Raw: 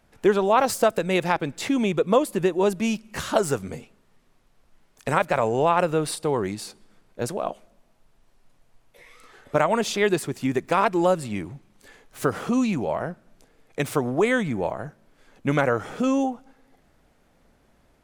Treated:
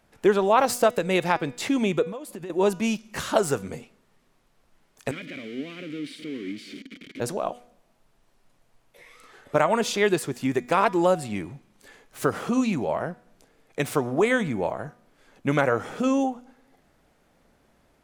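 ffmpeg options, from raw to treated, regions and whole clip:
ffmpeg -i in.wav -filter_complex "[0:a]asettb=1/sr,asplit=3[link_01][link_02][link_03];[link_01]atrim=end=2.044[link_04];[link_02]atrim=start=2.04:end=2.5,asetpts=PTS-STARTPTS,afade=type=in:duration=0.004:curve=qsin,afade=type=out:start_time=0.456:duration=0.004:curve=qsin,agate=range=-33dB:threshold=-41dB:ratio=3:release=100:detection=peak,acompressor=threshold=-32dB:ratio=12:attack=3.2:release=140:knee=1:detection=peak[link_05];[link_03]atrim=start=2.496[link_06];[link_04][link_05]acrossfade=duration=0.004:curve1=hsin:curve2=qsin[link_07];[link_07][link_06]acrossfade=duration=0.004:curve1=qsin:curve2=hsin,asettb=1/sr,asplit=3[link_08][link_09][link_10];[link_08]atrim=end=5.114[link_11];[link_09]atrim=start=5.11:end=7.2,asetpts=PTS-STARTPTS,afade=type=in:duration=0.004:curve=qsin,afade=type=out:start_time=2.086:duration=0.004:curve=qsin,aeval=exprs='val(0)+0.5*0.106*sgn(val(0))':channel_layout=same,asplit=3[link_12][link_13][link_14];[link_12]bandpass=frequency=270:width_type=q:width=8,volume=0dB[link_15];[link_13]bandpass=frequency=2290:width_type=q:width=8,volume=-6dB[link_16];[link_14]bandpass=frequency=3010:width_type=q:width=8,volume=-9dB[link_17];[link_15][link_16][link_17]amix=inputs=3:normalize=0[link_18];[link_10]atrim=start=7.196[link_19];[link_11][link_18]acrossfade=duration=0.004:curve1=hsin:curve2=qsin[link_20];[link_20][link_19]acrossfade=duration=0.004:curve1=qsin:curve2=hsin,lowshelf=frequency=92:gain=-6,bandreject=frequency=243.7:width_type=h:width=4,bandreject=frequency=487.4:width_type=h:width=4,bandreject=frequency=731.1:width_type=h:width=4,bandreject=frequency=974.8:width_type=h:width=4,bandreject=frequency=1218.5:width_type=h:width=4,bandreject=frequency=1462.2:width_type=h:width=4,bandreject=frequency=1705.9:width_type=h:width=4,bandreject=frequency=1949.6:width_type=h:width=4,bandreject=frequency=2193.3:width_type=h:width=4,bandreject=frequency=2437:width_type=h:width=4,bandreject=frequency=2680.7:width_type=h:width=4,bandreject=frequency=2924.4:width_type=h:width=4,bandreject=frequency=3168.1:width_type=h:width=4,bandreject=frequency=3411.8:width_type=h:width=4,bandreject=frequency=3655.5:width_type=h:width=4,bandreject=frequency=3899.2:width_type=h:width=4,bandreject=frequency=4142.9:width_type=h:width=4,bandreject=frequency=4386.6:width_type=h:width=4,bandreject=frequency=4630.3:width_type=h:width=4,bandreject=frequency=4874:width_type=h:width=4,bandreject=frequency=5117.7:width_type=h:width=4,bandreject=frequency=5361.4:width_type=h:width=4,bandreject=frequency=5605.1:width_type=h:width=4,bandreject=frequency=5848.8:width_type=h:width=4,bandreject=frequency=6092.5:width_type=h:width=4,bandreject=frequency=6336.2:width_type=h:width=4,bandreject=frequency=6579.9:width_type=h:width=4,bandreject=frequency=6823.6:width_type=h:width=4,bandreject=frequency=7067.3:width_type=h:width=4,bandreject=frequency=7311:width_type=h:width=4" out.wav

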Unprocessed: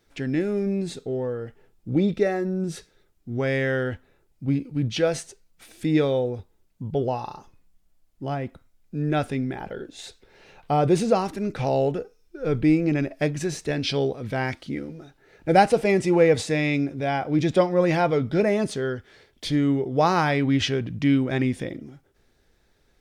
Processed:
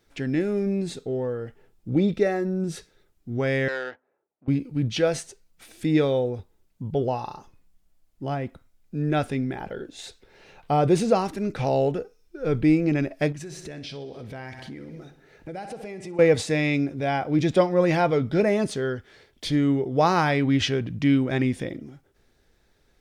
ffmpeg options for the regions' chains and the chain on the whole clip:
ffmpeg -i in.wav -filter_complex "[0:a]asettb=1/sr,asplit=3[link_01][link_02][link_03];[link_01]atrim=end=3.684[link_04];[link_02]atrim=start=3.68:end=4.48,asetpts=PTS-STARTPTS,afade=type=in:duration=0.004:curve=qsin,afade=type=out:start_time=0.796:duration=0.004:curve=qsin,volume=18dB,asoftclip=hard,volume=-18dB,adynamicsmooth=sensitivity=5:basefreq=830,highpass=610,lowpass=4200[link_05];[link_03]atrim=start=4.476[link_06];[link_04][link_05]acrossfade=duration=0.004:curve1=hsin:curve2=qsin[link_07];[link_07][link_06]acrossfade=duration=0.004:curve1=qsin:curve2=hsin,asettb=1/sr,asplit=3[link_08][link_09][link_10];[link_08]atrim=end=13.324[link_11];[link_09]atrim=start=13.32:end=16.19,asetpts=PTS-STARTPTS,afade=type=in:duration=0.004:curve=qsin,afade=type=out:start_time=2.866:duration=0.004:curve=qsin,aecho=1:1:63|126|189|252|315|378:0.2|0.118|0.0695|0.041|0.0242|0.0143,atrim=end_sample=126567,acompressor=threshold=-35dB:ratio=5:attack=3.2:release=140:knee=1:detection=peak[link_12];[link_10]atrim=start=16.186[link_13];[link_11][link_12]acrossfade=duration=0.004:curve1=hsin:curve2=qsin[link_14];[link_14][link_13]acrossfade=duration=0.004:curve1=qsin:curve2=hsin" out.wav

